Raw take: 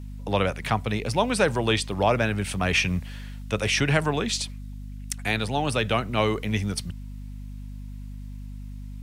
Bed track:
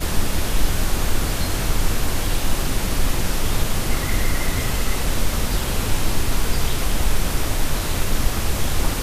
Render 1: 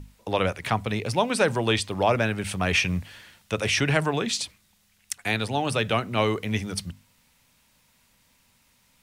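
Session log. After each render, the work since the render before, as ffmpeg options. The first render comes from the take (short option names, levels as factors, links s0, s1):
-af "bandreject=f=50:t=h:w=6,bandreject=f=100:t=h:w=6,bandreject=f=150:t=h:w=6,bandreject=f=200:t=h:w=6,bandreject=f=250:t=h:w=6"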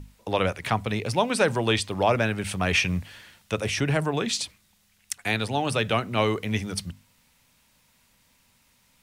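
-filter_complex "[0:a]asettb=1/sr,asplit=3[s0][s1][s2];[s0]atrim=end=3.594[s3];[s1]atrim=start=3.59:end=4.17,asetpts=PTS-STARTPTS,afade=t=in:d=0.004:c=qsin,afade=t=out:st=0.576:d=0.004:c=qsin,equalizer=f=2800:w=0.38:g=-5.5[s4];[s2]atrim=start=4.166[s5];[s3][s4]acrossfade=d=0.004:c1=hsin:c2=qsin[s6];[s6][s5]acrossfade=d=0.004:c1=qsin:c2=hsin"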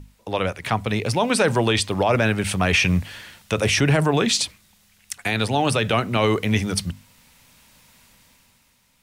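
-af "dynaudnorm=f=130:g=13:m=3.16,alimiter=limit=0.355:level=0:latency=1:release=26"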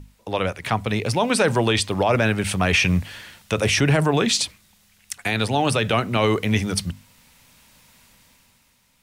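-af anull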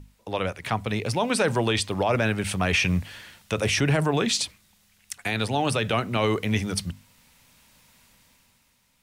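-af "volume=0.631"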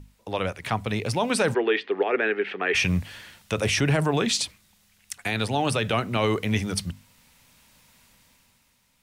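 -filter_complex "[0:a]asplit=3[s0][s1][s2];[s0]afade=t=out:st=1.53:d=0.02[s3];[s1]highpass=f=300:w=0.5412,highpass=f=300:w=1.3066,equalizer=f=410:t=q:w=4:g=10,equalizer=f=600:t=q:w=4:g=-8,equalizer=f=990:t=q:w=4:g=-7,equalizer=f=1800:t=q:w=4:g=7,lowpass=f=2900:w=0.5412,lowpass=f=2900:w=1.3066,afade=t=in:st=1.53:d=0.02,afade=t=out:st=2.74:d=0.02[s4];[s2]afade=t=in:st=2.74:d=0.02[s5];[s3][s4][s5]amix=inputs=3:normalize=0"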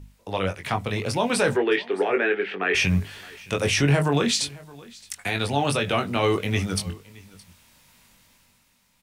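-filter_complex "[0:a]asplit=2[s0][s1];[s1]adelay=21,volume=0.562[s2];[s0][s2]amix=inputs=2:normalize=0,aecho=1:1:618:0.075"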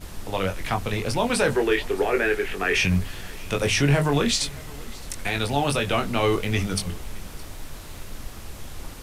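-filter_complex "[1:a]volume=0.15[s0];[0:a][s0]amix=inputs=2:normalize=0"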